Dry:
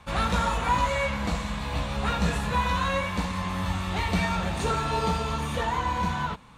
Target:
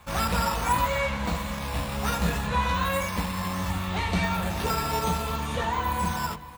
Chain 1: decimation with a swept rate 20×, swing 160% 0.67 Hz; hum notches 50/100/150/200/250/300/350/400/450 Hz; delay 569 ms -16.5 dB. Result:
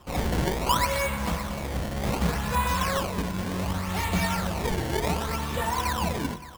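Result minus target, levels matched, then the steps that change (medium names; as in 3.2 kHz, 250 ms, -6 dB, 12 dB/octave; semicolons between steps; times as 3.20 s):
decimation with a swept rate: distortion +11 dB
change: decimation with a swept rate 4×, swing 160% 0.67 Hz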